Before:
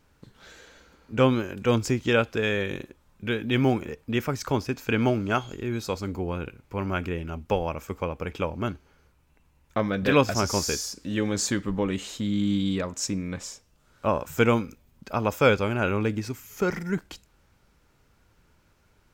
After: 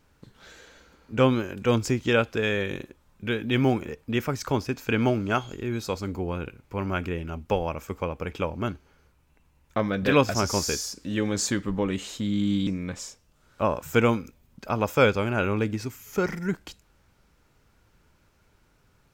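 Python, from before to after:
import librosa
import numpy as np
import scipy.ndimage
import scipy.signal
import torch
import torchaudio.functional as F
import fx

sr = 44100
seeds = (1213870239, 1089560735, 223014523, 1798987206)

y = fx.edit(x, sr, fx.cut(start_s=12.67, length_s=0.44), tone=tone)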